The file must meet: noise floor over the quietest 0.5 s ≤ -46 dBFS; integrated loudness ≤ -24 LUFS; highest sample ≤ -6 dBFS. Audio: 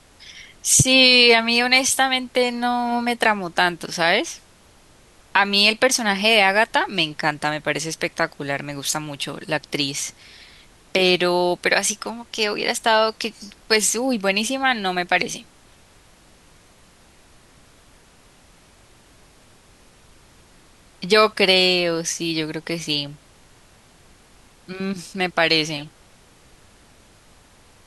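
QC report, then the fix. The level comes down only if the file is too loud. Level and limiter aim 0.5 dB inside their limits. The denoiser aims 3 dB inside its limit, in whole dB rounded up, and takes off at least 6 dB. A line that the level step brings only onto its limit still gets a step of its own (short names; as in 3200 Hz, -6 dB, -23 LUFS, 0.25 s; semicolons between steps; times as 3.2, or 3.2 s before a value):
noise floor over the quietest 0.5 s -52 dBFS: OK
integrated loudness -19.0 LUFS: fail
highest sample -2.5 dBFS: fail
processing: gain -5.5 dB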